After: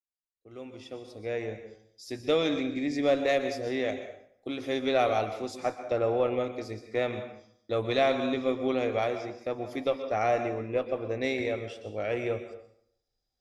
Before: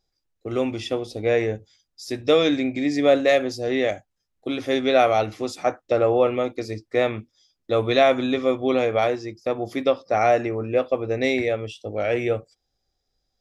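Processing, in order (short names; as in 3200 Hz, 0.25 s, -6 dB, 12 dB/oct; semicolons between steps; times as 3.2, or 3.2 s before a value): opening faded in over 2.25 s; plate-style reverb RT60 0.67 s, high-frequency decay 0.8×, pre-delay 0.11 s, DRR 8.5 dB; added harmonics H 4 -29 dB, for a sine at -5 dBFS; gain -8 dB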